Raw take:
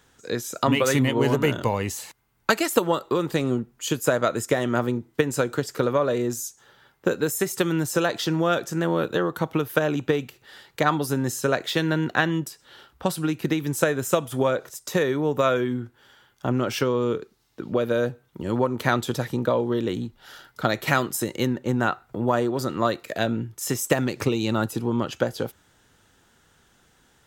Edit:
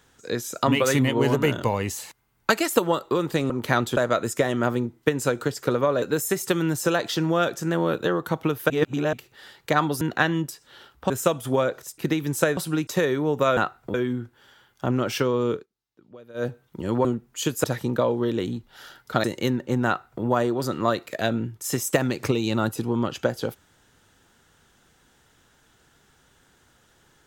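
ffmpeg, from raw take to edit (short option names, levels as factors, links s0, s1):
-filter_complex "[0:a]asplit=18[s0][s1][s2][s3][s4][s5][s6][s7][s8][s9][s10][s11][s12][s13][s14][s15][s16][s17];[s0]atrim=end=3.502[s18];[s1]atrim=start=18.658:end=19.132[s19];[s2]atrim=start=4.088:end=6.142[s20];[s3]atrim=start=7.118:end=9.802[s21];[s4]atrim=start=9.798:end=10.232,asetpts=PTS-STARTPTS,areverse[s22];[s5]atrim=start=10.228:end=11.112[s23];[s6]atrim=start=11.988:end=13.082[s24];[s7]atrim=start=13.968:end=14.852[s25];[s8]atrim=start=13.378:end=13.972[s26];[s9]atrim=start=13.078:end=13.382[s27];[s10]atrim=start=14.848:end=15.552[s28];[s11]atrim=start=21.828:end=22.202[s29];[s12]atrim=start=15.548:end=17.27,asetpts=PTS-STARTPTS,afade=t=out:st=1.602:d=0.12:silence=0.0794328[s30];[s13]atrim=start=17.27:end=17.95,asetpts=PTS-STARTPTS,volume=0.0794[s31];[s14]atrim=start=17.95:end=18.662,asetpts=PTS-STARTPTS,afade=t=in:d=0.12:silence=0.0794328[s32];[s15]atrim=start=3.498:end=4.092[s33];[s16]atrim=start=19.128:end=20.732[s34];[s17]atrim=start=21.208[s35];[s18][s19]acrossfade=d=0.004:c1=hsin:c2=hsin[s36];[s36][s20]acrossfade=d=0.004:c1=hsin:c2=hsin[s37];[s37][s21]acrossfade=d=0.004:c1=hsin:c2=hsin[s38];[s38][s22]acrossfade=d=0.004:c1=hsin:c2=hsin[s39];[s39][s23]acrossfade=d=0.004:c1=hsin:c2=hsin[s40];[s40][s24]acrossfade=d=0.004:c1=hsin:c2=hsin[s41];[s41][s25]acrossfade=d=0.004:c1=hsin:c2=hsin[s42];[s42][s26]acrossfade=d=0.004:c1=hsin:c2=hsin[s43];[s43][s27]acrossfade=d=0.004:c1=hsin:c2=hsin[s44];[s44][s28]acrossfade=d=0.004:c1=hsin:c2=hsin[s45];[s45][s29]acrossfade=d=0.004:c1=hsin:c2=hsin[s46];[s30][s31][s32]concat=n=3:v=0:a=1[s47];[s46][s47]acrossfade=d=0.004:c1=hsin:c2=hsin[s48];[s48][s33]acrossfade=d=0.004:c1=hsin:c2=hsin[s49];[s49][s34]acrossfade=d=0.004:c1=hsin:c2=hsin[s50];[s50][s35]acrossfade=d=0.004:c1=hsin:c2=hsin"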